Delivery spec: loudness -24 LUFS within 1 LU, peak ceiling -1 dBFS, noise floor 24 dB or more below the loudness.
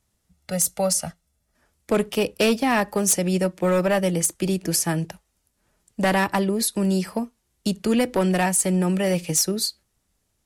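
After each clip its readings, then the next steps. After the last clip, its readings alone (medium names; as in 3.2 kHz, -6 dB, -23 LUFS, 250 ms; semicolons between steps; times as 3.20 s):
clipped samples 0.6%; clipping level -13.5 dBFS; loudness -22.5 LUFS; peak level -13.5 dBFS; loudness target -24.0 LUFS
-> clip repair -13.5 dBFS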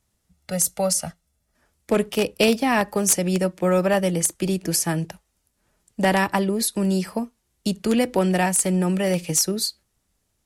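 clipped samples 0.0%; loudness -22.0 LUFS; peak level -4.5 dBFS; loudness target -24.0 LUFS
-> trim -2 dB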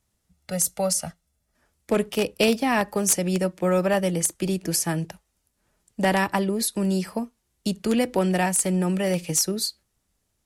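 loudness -24.0 LUFS; peak level -6.5 dBFS; noise floor -74 dBFS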